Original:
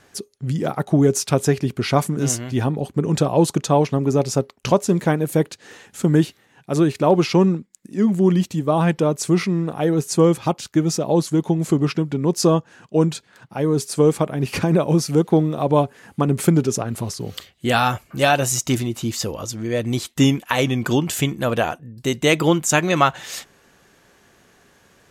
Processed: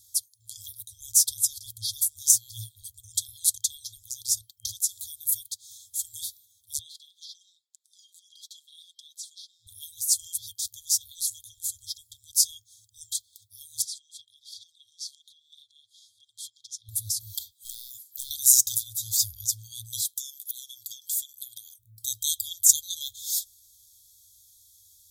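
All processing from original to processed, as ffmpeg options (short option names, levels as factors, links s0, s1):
-filter_complex "[0:a]asettb=1/sr,asplit=3[s0][s1][s2];[s0]atrim=end=6.794[s3];[s1]atrim=start=6.79:end=9.67,asetpts=PTS-STARTPTS,afade=t=in:d=0.004:c=qsin,afade=t=out:st=2.876:d=0.004:c=qsin,bandpass=f=3600:t=q:w=2.5,aecho=1:1:5.6:0.36,atrim=end_sample=127008,acompressor=threshold=0.0126:ratio=4:attack=3.2:release=140:knee=1:detection=peak[s4];[s2]atrim=start=9.666[s5];[s3][s4]acrossfade=d=0.004:c1=hsin:c2=qsin[s6];[s6][s5]acrossfade=d=0.004:c1=qsin:c2=hsin,asettb=1/sr,asplit=3[s7][s8][s9];[s7]atrim=end=13.824[s10];[s8]atrim=start=13.82:end=16.89,asetpts=PTS-STARTPTS,afade=t=in:d=0.004:c=qsin,afade=t=out:st=3.066:d=0.004:c=qsin,equalizer=f=2000:w=0.58:g=12.5,acompressor=threshold=0.0501:ratio=10:attack=3.2:release=140:knee=1:detection=peak,highpass=390,lowpass=4600[s11];[s9]atrim=start=16.886[s12];[s10][s11]acrossfade=d=0.004:c1=hsin:c2=qsin[s13];[s13][s12]acrossfade=d=0.004:c1=qsin:c2=hsin,asettb=1/sr,asplit=3[s14][s15][s16];[s14]atrim=end=17.524[s17];[s15]atrim=start=17.52:end=18.31,asetpts=PTS-STARTPTS,afade=t=in:d=0.004:c=qsin,afade=t=out:st=0.786:d=0.004:c=qsin,highpass=370,acompressor=threshold=0.0562:ratio=12:attack=3.2:release=140:knee=1:detection=peak,aeval=exprs='clip(val(0),-1,0.0266)':c=same[s18];[s16]atrim=start=18.306[s19];[s17][s18]acrossfade=d=0.004:c1=hsin:c2=qsin[s20];[s20][s19]acrossfade=d=0.004:c1=qsin:c2=hsin,asettb=1/sr,asplit=3[s21][s22][s23];[s21]atrim=end=20.164[s24];[s22]atrim=start=20.16:end=21.78,asetpts=PTS-STARTPTS,afade=t=in:d=0.004:c=qsin,afade=t=out:st=1.616:d=0.004:c=qsin,highpass=f=1500:p=1,acompressor=threshold=0.0282:ratio=10:attack=3.2:release=140:knee=1:detection=peak[s25];[s23]atrim=start=21.776[s26];[s24][s25]acrossfade=d=0.004:c1=hsin:c2=qsin[s27];[s27][s26]acrossfade=d=0.004:c1=qsin:c2=hsin,aemphasis=mode=production:type=75fm,afftfilt=real='re*(1-between(b*sr/4096,110,3200))':imag='im*(1-between(b*sr/4096,110,3200))':win_size=4096:overlap=0.75,highshelf=f=8900:g=5.5,volume=0.398"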